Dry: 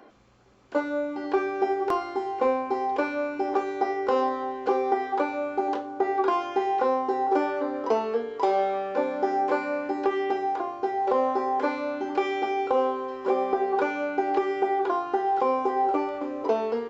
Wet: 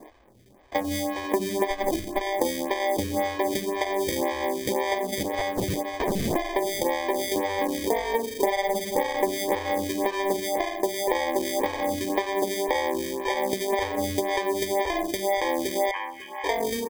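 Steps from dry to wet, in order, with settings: 1.70–2.21 s: comb filter that takes the minimum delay 3.6 ms; 5.23–6.36 s: integer overflow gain 22.5 dB; compression, threshold -26 dBFS, peak gain reduction 8 dB; sample-and-hold 32×; 15.91–16.44 s: brick-wall FIR band-pass 780–3300 Hz; delay 547 ms -19 dB; lamp-driven phase shifter 1.9 Hz; trim +6.5 dB

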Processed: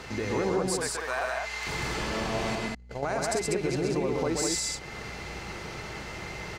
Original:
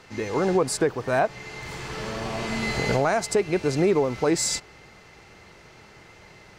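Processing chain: 0.78–1.67 s: high-pass 980 Hz 12 dB/octave; 2.55–3.03 s: gate -18 dBFS, range -53 dB; peak limiter -16 dBFS, peak gain reduction 4.5 dB; compression 2.5:1, threshold -43 dBFS, peak gain reduction 15 dB; hum 60 Hz, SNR 19 dB; loudspeakers at several distances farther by 45 m -3 dB, 67 m -3 dB; trim +8 dB

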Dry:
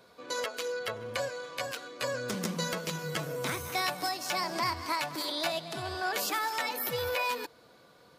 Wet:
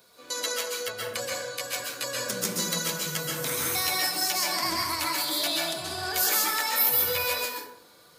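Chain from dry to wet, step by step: pre-emphasis filter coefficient 0.8; plate-style reverb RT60 0.7 s, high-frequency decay 0.5×, pre-delay 115 ms, DRR -3 dB; trim +9 dB

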